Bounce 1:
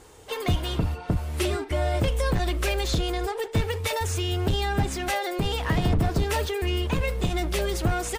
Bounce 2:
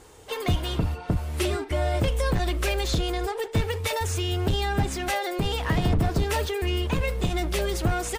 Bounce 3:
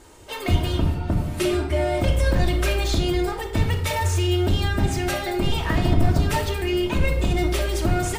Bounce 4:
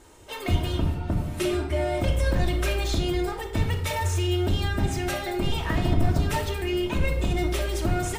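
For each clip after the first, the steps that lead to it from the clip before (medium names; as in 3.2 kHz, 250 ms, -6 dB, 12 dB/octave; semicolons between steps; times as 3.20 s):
no audible change
reverberation RT60 0.80 s, pre-delay 3 ms, DRR 1.5 dB
band-stop 4.6 kHz, Q 25; trim -3.5 dB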